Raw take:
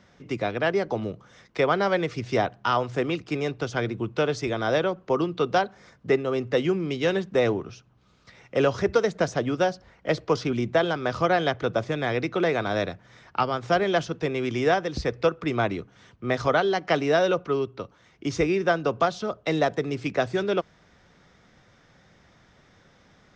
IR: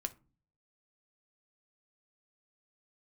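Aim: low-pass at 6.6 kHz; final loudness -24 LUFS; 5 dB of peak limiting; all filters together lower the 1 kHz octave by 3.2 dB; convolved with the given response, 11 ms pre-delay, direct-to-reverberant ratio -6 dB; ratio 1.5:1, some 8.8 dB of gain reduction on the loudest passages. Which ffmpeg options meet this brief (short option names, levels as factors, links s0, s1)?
-filter_complex "[0:a]lowpass=6600,equalizer=f=1000:t=o:g=-5,acompressor=threshold=0.00708:ratio=1.5,alimiter=limit=0.0631:level=0:latency=1,asplit=2[s0][s1];[1:a]atrim=start_sample=2205,adelay=11[s2];[s1][s2]afir=irnorm=-1:irlink=0,volume=2.24[s3];[s0][s3]amix=inputs=2:normalize=0,volume=1.68"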